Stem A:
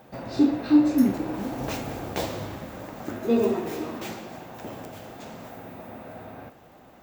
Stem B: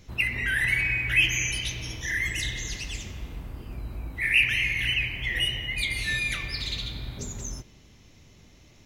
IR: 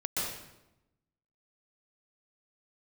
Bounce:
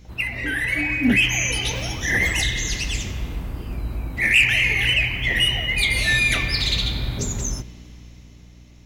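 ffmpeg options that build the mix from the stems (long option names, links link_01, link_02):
-filter_complex "[0:a]lowpass=frequency=3400:poles=1,aphaser=in_gain=1:out_gain=1:delay=2.6:decay=0.79:speed=0.95:type=triangular,adelay=50,volume=-10.5dB,asplit=3[link_01][link_02][link_03];[link_01]atrim=end=2.43,asetpts=PTS-STARTPTS,afade=type=out:start_time=2.426:duration=0.004:curve=hsin[link_04];[link_02]atrim=start=2.43:end=4.17,asetpts=PTS-STARTPTS,volume=0[link_05];[link_03]atrim=start=4.17,asetpts=PTS-STARTPTS,afade=type=in:duration=0.004:curve=hsin[link_06];[link_04][link_05][link_06]concat=n=3:v=0:a=1[link_07];[1:a]aeval=exprs='val(0)+0.00447*(sin(2*PI*60*n/s)+sin(2*PI*2*60*n/s)/2+sin(2*PI*3*60*n/s)/3+sin(2*PI*4*60*n/s)/4+sin(2*PI*5*60*n/s)/5)':channel_layout=same,volume=0.5dB[link_08];[link_07][link_08]amix=inputs=2:normalize=0,dynaudnorm=framelen=240:gausssize=11:maxgain=10.5dB,asoftclip=type=tanh:threshold=-8dB"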